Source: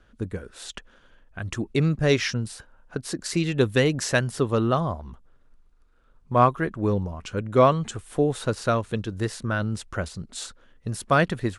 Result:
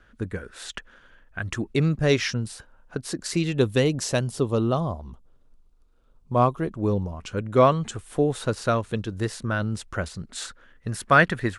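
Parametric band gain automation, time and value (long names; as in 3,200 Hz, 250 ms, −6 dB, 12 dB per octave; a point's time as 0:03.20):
parametric band 1,700 Hz 1 octave
0:01.40 +6.5 dB
0:01.83 −0.5 dB
0:03.30 −0.5 dB
0:04.21 −10 dB
0:06.67 −10 dB
0:07.36 0 dB
0:09.87 0 dB
0:10.42 +8 dB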